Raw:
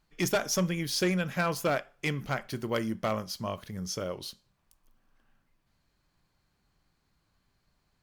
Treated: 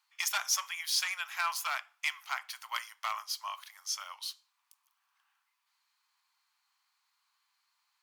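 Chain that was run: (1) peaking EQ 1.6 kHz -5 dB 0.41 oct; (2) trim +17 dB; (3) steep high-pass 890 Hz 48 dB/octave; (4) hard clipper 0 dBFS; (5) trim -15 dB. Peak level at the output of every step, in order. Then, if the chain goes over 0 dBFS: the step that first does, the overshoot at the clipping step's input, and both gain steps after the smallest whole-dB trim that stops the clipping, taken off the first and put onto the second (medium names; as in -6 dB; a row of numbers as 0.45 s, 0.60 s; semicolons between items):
-19.5 dBFS, -2.5 dBFS, -2.0 dBFS, -2.0 dBFS, -17.0 dBFS; nothing clips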